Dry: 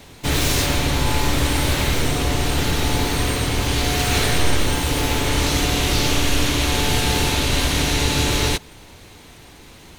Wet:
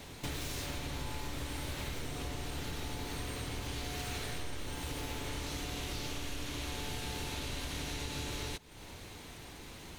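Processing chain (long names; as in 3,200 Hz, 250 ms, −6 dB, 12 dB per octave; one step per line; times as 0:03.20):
downward compressor 5 to 1, threshold −33 dBFS, peak gain reduction 18.5 dB
level −5 dB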